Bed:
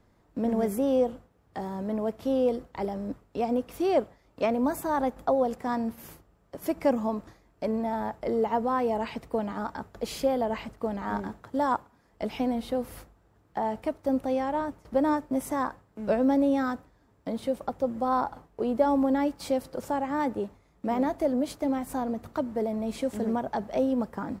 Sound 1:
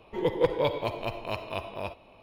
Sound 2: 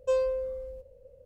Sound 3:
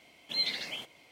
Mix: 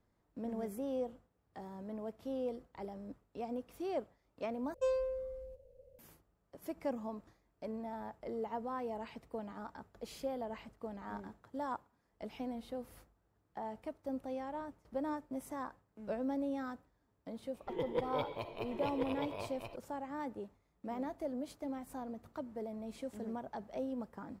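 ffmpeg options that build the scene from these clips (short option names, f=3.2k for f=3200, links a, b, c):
-filter_complex "[0:a]volume=-13.5dB[a];[1:a]aecho=1:1:1034:0.668[b];[a]asplit=2[c][d];[c]atrim=end=4.744[e];[2:a]atrim=end=1.25,asetpts=PTS-STARTPTS,volume=-7dB[f];[d]atrim=start=5.986[g];[b]atrim=end=2.22,asetpts=PTS-STARTPTS,volume=-11.5dB,afade=t=in:d=0.004:c=hsin,afade=t=out:st=2.216:d=0.004:c=hsin,adelay=17540[h];[e][f]acrossfade=d=0.004:c1=hsin:c2=hsin[i];[i][g]acrossfade=d=0.004:c1=hsin:c2=hsin[j];[j][h]amix=inputs=2:normalize=0"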